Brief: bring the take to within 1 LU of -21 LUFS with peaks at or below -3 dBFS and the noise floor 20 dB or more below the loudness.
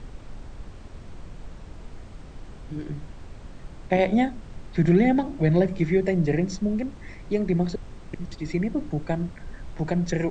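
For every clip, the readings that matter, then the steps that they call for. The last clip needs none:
noise floor -43 dBFS; noise floor target -45 dBFS; loudness -25.0 LUFS; peak level -7.0 dBFS; loudness target -21.0 LUFS
-> noise print and reduce 6 dB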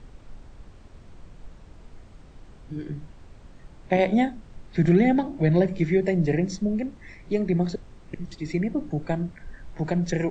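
noise floor -49 dBFS; loudness -25.0 LUFS; peak level -7.5 dBFS; loudness target -21.0 LUFS
-> trim +4 dB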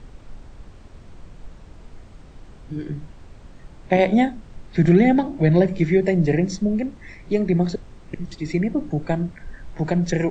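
loudness -21.0 LUFS; peak level -3.5 dBFS; noise floor -45 dBFS

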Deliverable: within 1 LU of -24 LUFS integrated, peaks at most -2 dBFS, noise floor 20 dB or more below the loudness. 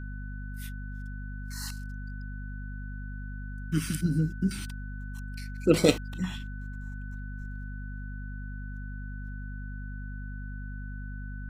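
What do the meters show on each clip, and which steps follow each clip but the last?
hum 50 Hz; highest harmonic 250 Hz; hum level -35 dBFS; steady tone 1.5 kHz; tone level -47 dBFS; loudness -34.0 LUFS; peak level -5.0 dBFS; loudness target -24.0 LUFS
-> de-hum 50 Hz, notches 5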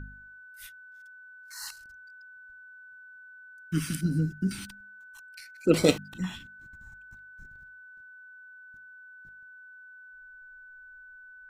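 hum not found; steady tone 1.5 kHz; tone level -47 dBFS
-> band-stop 1.5 kHz, Q 30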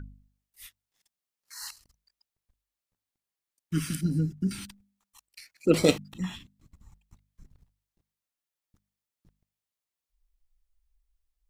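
steady tone not found; loudness -29.0 LUFS; peak level -5.5 dBFS; loudness target -24.0 LUFS
-> trim +5 dB; peak limiter -2 dBFS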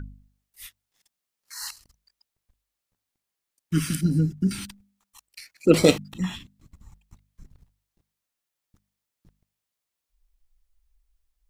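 loudness -24.5 LUFS; peak level -2.0 dBFS; noise floor -85 dBFS

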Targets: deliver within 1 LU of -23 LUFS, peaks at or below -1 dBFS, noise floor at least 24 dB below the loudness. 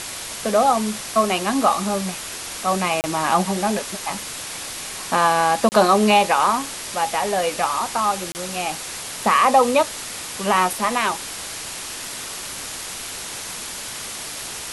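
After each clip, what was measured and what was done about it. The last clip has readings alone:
dropouts 3; longest dropout 29 ms; noise floor -32 dBFS; noise floor target -46 dBFS; loudness -21.5 LUFS; peak level -3.5 dBFS; loudness target -23.0 LUFS
-> interpolate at 3.01/5.69/8.32 s, 29 ms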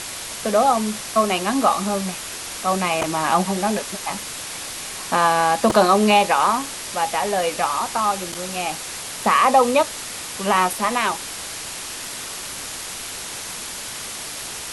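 dropouts 0; noise floor -32 dBFS; noise floor target -46 dBFS
-> noise print and reduce 14 dB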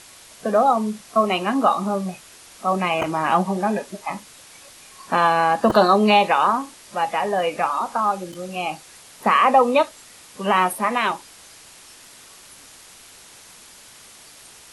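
noise floor -46 dBFS; loudness -20.5 LUFS; peak level -3.5 dBFS; loudness target -23.0 LUFS
-> trim -2.5 dB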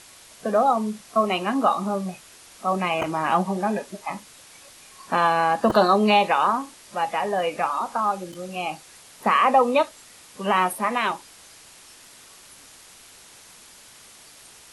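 loudness -23.0 LUFS; peak level -6.0 dBFS; noise floor -49 dBFS

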